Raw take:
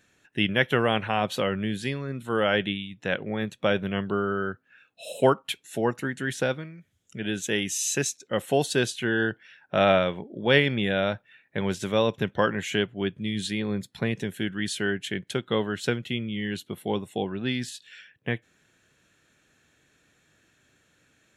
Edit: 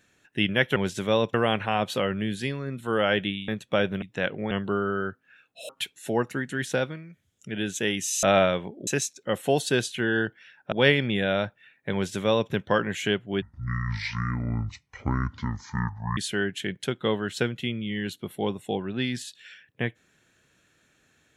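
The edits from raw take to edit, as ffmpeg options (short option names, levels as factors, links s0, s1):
-filter_complex "[0:a]asplit=12[s0][s1][s2][s3][s4][s5][s6][s7][s8][s9][s10][s11];[s0]atrim=end=0.762[s12];[s1]atrim=start=11.608:end=12.192[s13];[s2]atrim=start=0.758:end=2.902[s14];[s3]atrim=start=3.388:end=3.932[s15];[s4]atrim=start=2.898:end=3.392[s16];[s5]atrim=start=3.928:end=5.112[s17];[s6]atrim=start=5.368:end=7.912[s18];[s7]atrim=start=9.758:end=10.402[s19];[s8]atrim=start=7.908:end=9.762[s20];[s9]atrim=start=10.398:end=13.104[s21];[s10]atrim=start=13.1:end=14.64,asetpts=PTS-STARTPTS,asetrate=24696,aresample=44100[s22];[s11]atrim=start=14.636[s23];[s12][s13]acrossfade=d=0.004:c1=hsin:c2=hsin[s24];[s24][s14]acrossfade=d=0.004:c1=hsin:c2=hsin[s25];[s25][s15]acrossfade=d=0.004:c1=hsin:c2=hsin[s26];[s26][s16]acrossfade=d=0.004:c1=hsin:c2=hsin[s27];[s27][s17]acrossfade=d=0.004:c1=hsin:c2=hsin[s28];[s28][s18]acrossfade=d=0.004:c1=hsin:c2=hsin[s29];[s29][s19]acrossfade=d=0.004:c1=hsin:c2=hsin[s30];[s30][s20]acrossfade=d=0.004:c1=hsin:c2=hsin[s31];[s31][s21]acrossfade=d=0.004:c1=hsin:c2=hsin[s32];[s32][s22]acrossfade=d=0.004:c1=hsin:c2=hsin[s33];[s33][s23]acrossfade=d=0.004:c1=hsin:c2=hsin"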